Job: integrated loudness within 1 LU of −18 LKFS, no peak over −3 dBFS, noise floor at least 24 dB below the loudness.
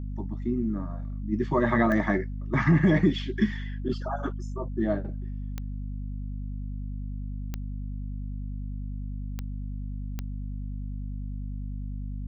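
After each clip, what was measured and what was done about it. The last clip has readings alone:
number of clicks 5; mains hum 50 Hz; hum harmonics up to 250 Hz; level of the hum −31 dBFS; integrated loudness −30.0 LKFS; sample peak −11.0 dBFS; target loudness −18.0 LKFS
→ click removal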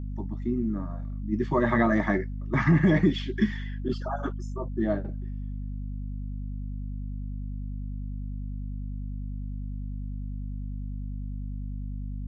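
number of clicks 0; mains hum 50 Hz; hum harmonics up to 250 Hz; level of the hum −31 dBFS
→ mains-hum notches 50/100/150/200/250 Hz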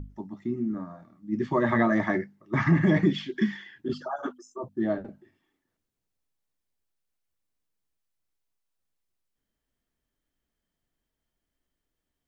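mains hum none found; integrated loudness −27.5 LKFS; sample peak −10.5 dBFS; target loudness −18.0 LKFS
→ level +9.5 dB
brickwall limiter −3 dBFS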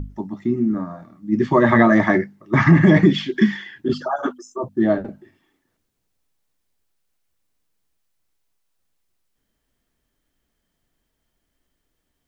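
integrated loudness −18.0 LKFS; sample peak −3.0 dBFS; background noise floor −75 dBFS

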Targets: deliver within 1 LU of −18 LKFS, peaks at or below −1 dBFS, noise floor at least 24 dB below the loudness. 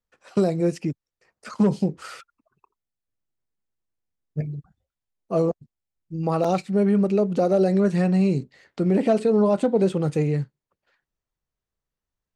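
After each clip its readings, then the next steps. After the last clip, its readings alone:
number of dropouts 1; longest dropout 4.7 ms; integrated loudness −22.5 LKFS; sample peak −8.5 dBFS; target loudness −18.0 LKFS
→ repair the gap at 0:06.44, 4.7 ms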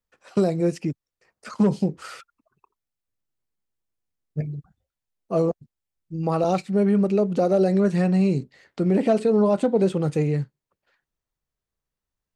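number of dropouts 0; integrated loudness −22.5 LKFS; sample peak −8.5 dBFS; target loudness −18.0 LKFS
→ level +4.5 dB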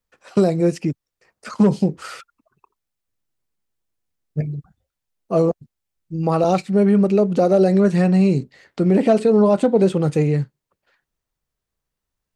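integrated loudness −18.0 LKFS; sample peak −4.0 dBFS; background noise floor −83 dBFS

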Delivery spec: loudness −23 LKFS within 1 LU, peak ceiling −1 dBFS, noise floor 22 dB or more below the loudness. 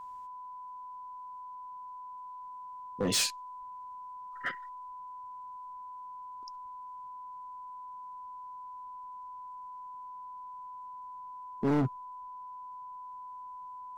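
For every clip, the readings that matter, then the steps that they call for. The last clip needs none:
share of clipped samples 0.5%; peaks flattened at −24.0 dBFS; interfering tone 1,000 Hz; level of the tone −42 dBFS; integrated loudness −39.5 LKFS; sample peak −24.0 dBFS; target loudness −23.0 LKFS
→ clipped peaks rebuilt −24 dBFS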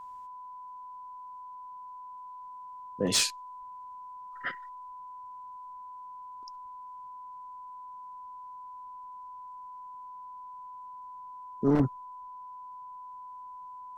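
share of clipped samples 0.0%; interfering tone 1,000 Hz; level of the tone −42 dBFS
→ notch filter 1,000 Hz, Q 30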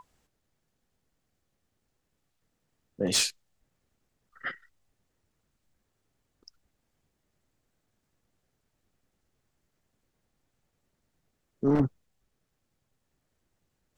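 interfering tone none found; integrated loudness −29.0 LKFS; sample peak −14.5 dBFS; target loudness −23.0 LKFS
→ level +6 dB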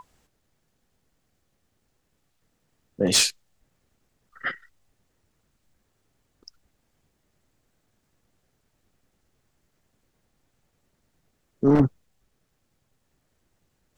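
integrated loudness −22.5 LKFS; sample peak −8.5 dBFS; background noise floor −73 dBFS

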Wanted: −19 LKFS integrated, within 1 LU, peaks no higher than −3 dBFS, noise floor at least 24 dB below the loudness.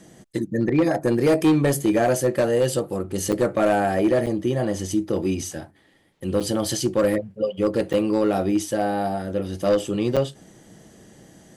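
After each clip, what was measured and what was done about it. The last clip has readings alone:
share of clipped samples 1.4%; peaks flattened at −13.0 dBFS; number of dropouts 5; longest dropout 6.7 ms; integrated loudness −22.5 LKFS; sample peak −13.0 dBFS; target loudness −19.0 LKFS
→ clipped peaks rebuilt −13 dBFS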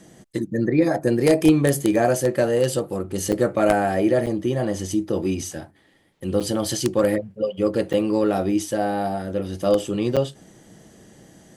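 share of clipped samples 0.0%; number of dropouts 5; longest dropout 6.7 ms
→ repair the gap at 0:03.32/0:04.26/0:06.40/0:07.93/0:10.16, 6.7 ms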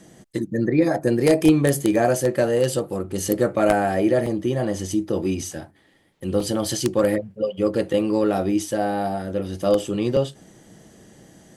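number of dropouts 0; integrated loudness −22.0 LKFS; sample peak −4.0 dBFS; target loudness −19.0 LKFS
→ level +3 dB
brickwall limiter −3 dBFS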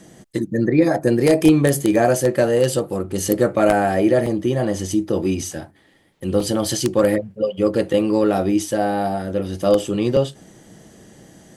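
integrated loudness −19.0 LKFS; sample peak −3.0 dBFS; background noise floor −55 dBFS

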